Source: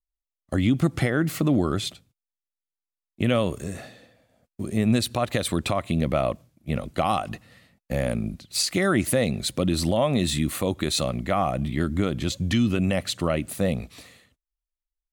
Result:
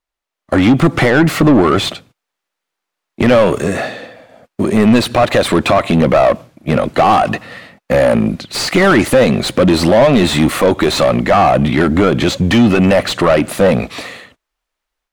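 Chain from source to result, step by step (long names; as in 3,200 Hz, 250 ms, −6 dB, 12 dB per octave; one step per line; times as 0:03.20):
automatic gain control gain up to 5.5 dB
mid-hump overdrive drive 24 dB, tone 1,300 Hz, clips at −5.5 dBFS
level +4.5 dB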